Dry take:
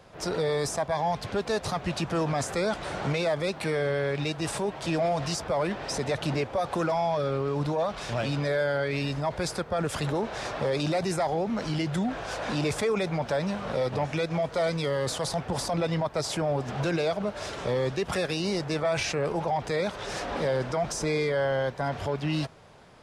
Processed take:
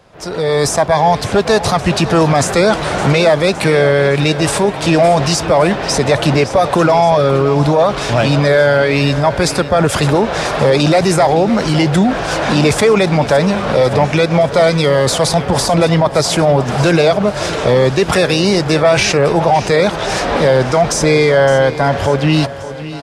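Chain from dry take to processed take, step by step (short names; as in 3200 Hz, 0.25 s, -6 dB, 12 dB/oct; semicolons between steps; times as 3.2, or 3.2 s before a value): AGC gain up to 11.5 dB; feedback echo 0.564 s, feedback 54%, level -14.5 dB; gain +4.5 dB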